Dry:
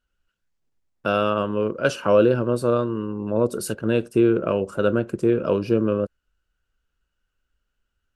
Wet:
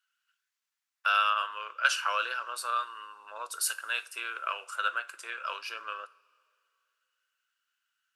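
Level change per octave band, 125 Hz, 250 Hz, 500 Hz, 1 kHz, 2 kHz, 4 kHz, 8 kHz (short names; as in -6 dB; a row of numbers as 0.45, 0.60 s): under -40 dB, under -40 dB, -27.0 dB, -0.5 dB, +2.0 dB, +3.0 dB, +3.0 dB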